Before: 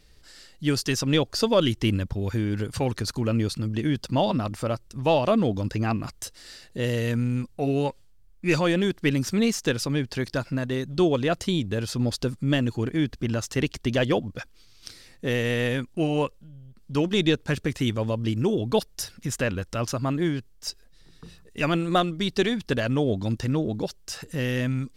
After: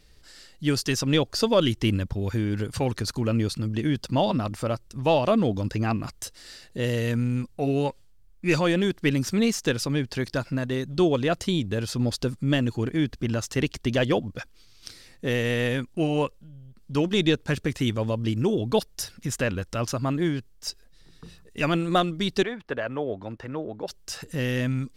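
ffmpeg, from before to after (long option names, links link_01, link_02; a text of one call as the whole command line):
ffmpeg -i in.wav -filter_complex "[0:a]asettb=1/sr,asplit=3[link_01][link_02][link_03];[link_01]atrim=end=22.434[link_04];[link_02]atrim=start=22.43:end=23.88,asetpts=PTS-STARTPTS,afade=type=in:duration=0.004:curve=qsin,afade=type=out:start_time=1.446:duration=0.004:curve=qsin,acrossover=split=410 2300:gain=0.224 1 0.1[link_05][link_06][link_07];[link_05][link_06][link_07]amix=inputs=3:normalize=0[link_08];[link_03]atrim=start=23.876[link_09];[link_04][link_08]acrossfade=duration=0.004:curve1=hsin:curve2=qsin[link_10];[link_10][link_09]acrossfade=duration=0.004:curve1=qsin:curve2=hsin" out.wav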